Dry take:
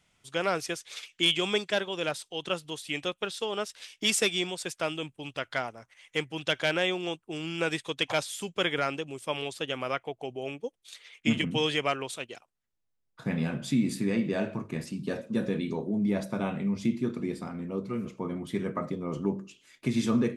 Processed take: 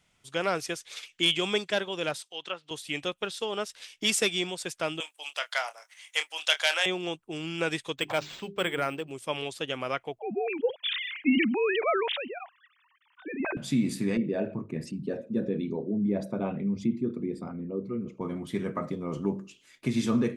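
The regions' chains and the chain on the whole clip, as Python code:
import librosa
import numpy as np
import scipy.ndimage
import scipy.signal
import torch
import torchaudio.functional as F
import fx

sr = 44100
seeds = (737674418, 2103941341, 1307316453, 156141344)

y = fx.chain(x, sr, fx.env_lowpass_down(base_hz=2200.0, full_db=-27.0),
    fx.highpass(hz=1000.0, slope=6), at=(2.21, 2.71))
y = fx.chain(y, sr, fx.highpass(hz=630.0, slope=24),
    fx.high_shelf(hz=3400.0, db=11.5),
    fx.doubler(ms=27.0, db=-10.5), at=(5.0, 6.86))
y = fx.chain(y, sr, fx.high_shelf(hz=8600.0, db=-9.5),
    fx.hum_notches(base_hz=50, count=8),
    fx.resample_linear(factor=4), at=(7.96, 9.11))
y = fx.chain(y, sr, fx.sine_speech(),
    fx.sustainer(db_per_s=33.0), at=(10.19, 13.57))
y = fx.chain(y, sr, fx.envelope_sharpen(power=1.5),
    fx.highpass(hz=53.0, slope=12),
    fx.peak_eq(hz=1400.0, db=-2.0, octaves=0.77), at=(14.17, 18.21))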